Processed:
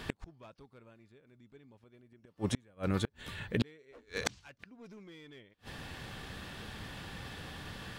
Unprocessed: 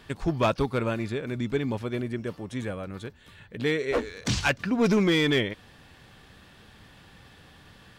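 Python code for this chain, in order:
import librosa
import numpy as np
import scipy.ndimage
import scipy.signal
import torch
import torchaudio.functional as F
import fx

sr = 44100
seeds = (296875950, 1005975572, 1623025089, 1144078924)

y = fx.gate_flip(x, sr, shuts_db=-25.0, range_db=-37)
y = F.gain(torch.from_numpy(y), 7.0).numpy()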